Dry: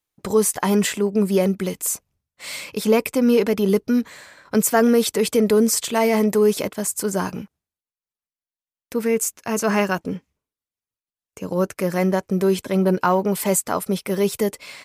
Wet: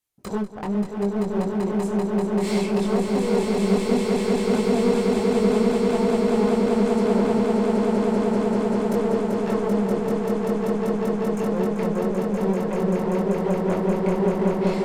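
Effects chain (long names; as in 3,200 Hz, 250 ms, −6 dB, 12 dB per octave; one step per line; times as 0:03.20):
treble cut that deepens with the level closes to 410 Hz, closed at −16.5 dBFS
high-shelf EQ 5,700 Hz +6 dB
asymmetric clip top −29.5 dBFS, bottom −12.5 dBFS
multi-voice chorus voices 2, 0.35 Hz, delay 22 ms, depth 3.3 ms
echo that builds up and dies away 194 ms, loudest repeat 8, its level −4 dB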